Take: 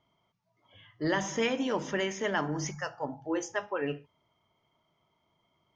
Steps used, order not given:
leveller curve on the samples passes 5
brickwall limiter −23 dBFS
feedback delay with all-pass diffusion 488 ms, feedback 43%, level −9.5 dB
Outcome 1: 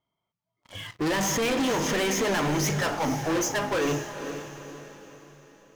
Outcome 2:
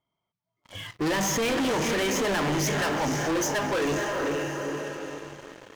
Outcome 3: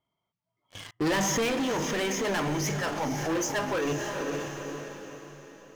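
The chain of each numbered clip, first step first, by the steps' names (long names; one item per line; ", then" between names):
brickwall limiter, then leveller curve on the samples, then feedback delay with all-pass diffusion
feedback delay with all-pass diffusion, then brickwall limiter, then leveller curve on the samples
leveller curve on the samples, then feedback delay with all-pass diffusion, then brickwall limiter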